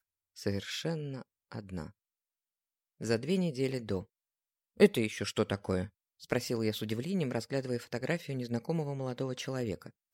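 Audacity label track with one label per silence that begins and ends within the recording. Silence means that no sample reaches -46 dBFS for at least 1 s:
1.890000	3.010000	silence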